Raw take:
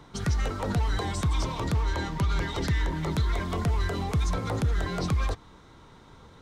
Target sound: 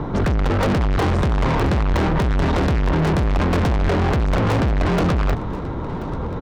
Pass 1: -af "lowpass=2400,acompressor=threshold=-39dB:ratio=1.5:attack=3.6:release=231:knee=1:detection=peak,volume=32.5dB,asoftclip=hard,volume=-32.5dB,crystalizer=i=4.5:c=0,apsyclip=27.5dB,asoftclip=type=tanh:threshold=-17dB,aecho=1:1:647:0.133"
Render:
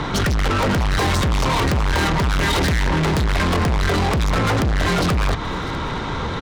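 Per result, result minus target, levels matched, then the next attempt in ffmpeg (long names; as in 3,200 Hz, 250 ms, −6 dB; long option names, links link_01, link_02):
echo 386 ms early; downward compressor: peak gain reduction +6.5 dB; 2,000 Hz band +5.0 dB
-af "lowpass=2400,acompressor=threshold=-39dB:ratio=1.5:attack=3.6:release=231:knee=1:detection=peak,volume=32.5dB,asoftclip=hard,volume=-32.5dB,crystalizer=i=4.5:c=0,apsyclip=27.5dB,asoftclip=type=tanh:threshold=-17dB,aecho=1:1:1033:0.133"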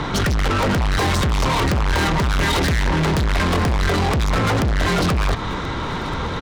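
downward compressor: peak gain reduction +6.5 dB; 2,000 Hz band +5.0 dB
-af "lowpass=2400,volume=32.5dB,asoftclip=hard,volume=-32.5dB,crystalizer=i=4.5:c=0,apsyclip=27.5dB,asoftclip=type=tanh:threshold=-17dB,aecho=1:1:1033:0.133"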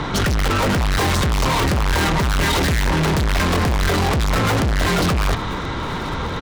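2,000 Hz band +5.0 dB
-af "lowpass=730,volume=32.5dB,asoftclip=hard,volume=-32.5dB,crystalizer=i=4.5:c=0,apsyclip=27.5dB,asoftclip=type=tanh:threshold=-17dB,aecho=1:1:1033:0.133"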